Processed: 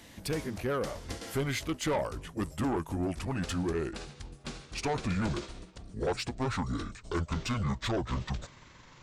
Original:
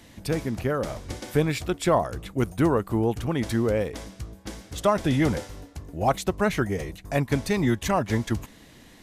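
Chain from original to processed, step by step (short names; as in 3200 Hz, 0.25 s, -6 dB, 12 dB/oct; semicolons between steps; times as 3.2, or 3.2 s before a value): gliding pitch shift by -11 st starting unshifted; low shelf 440 Hz -4.5 dB; soft clip -25 dBFS, distortion -10 dB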